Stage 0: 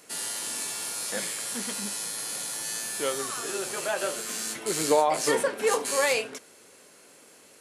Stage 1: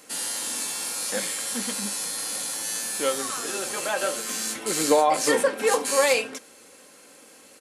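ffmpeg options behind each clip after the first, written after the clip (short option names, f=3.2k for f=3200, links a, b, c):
-af "aecho=1:1:3.8:0.41,volume=2.5dB"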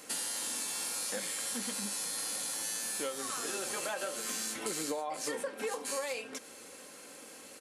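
-af "acompressor=threshold=-33dB:ratio=12"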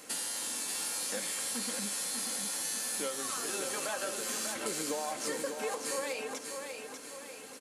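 -af "aecho=1:1:593|1186|1779|2372|2965|3558:0.501|0.231|0.106|0.0488|0.0224|0.0103"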